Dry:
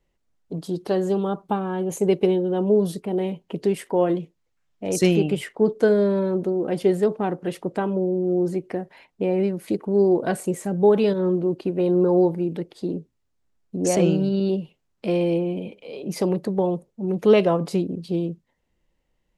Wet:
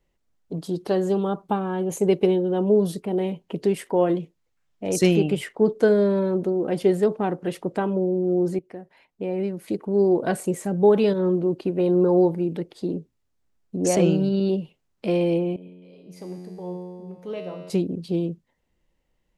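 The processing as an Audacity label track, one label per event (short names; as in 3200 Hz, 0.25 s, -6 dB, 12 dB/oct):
8.590000	10.300000	fade in, from -12.5 dB
15.560000	17.700000	resonator 90 Hz, decay 2 s, mix 90%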